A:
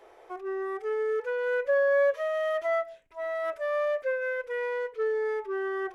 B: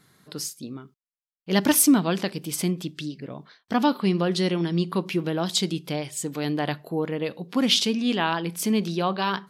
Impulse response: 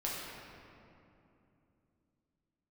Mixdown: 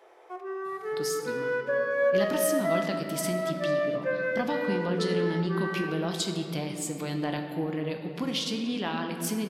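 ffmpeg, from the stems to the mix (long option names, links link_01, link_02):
-filter_complex "[0:a]highpass=frequency=310:poles=1,volume=-4.5dB,asplit=2[link_01][link_02];[link_02]volume=-4dB[link_03];[1:a]acompressor=threshold=-25dB:ratio=6,adelay=650,volume=-6.5dB,asplit=2[link_04][link_05];[link_05]volume=-3.5dB[link_06];[2:a]atrim=start_sample=2205[link_07];[link_03][link_06]amix=inputs=2:normalize=0[link_08];[link_08][link_07]afir=irnorm=-1:irlink=0[link_09];[link_01][link_04][link_09]amix=inputs=3:normalize=0"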